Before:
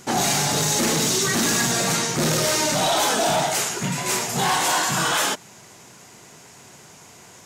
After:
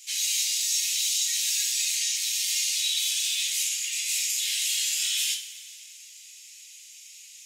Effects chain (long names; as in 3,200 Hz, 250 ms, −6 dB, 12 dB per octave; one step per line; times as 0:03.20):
Butterworth high-pass 2,300 Hz 48 dB per octave
brickwall limiter −19 dBFS, peak gain reduction 7 dB
coupled-rooms reverb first 0.3 s, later 2.3 s, from −18 dB, DRR −1 dB
level −2 dB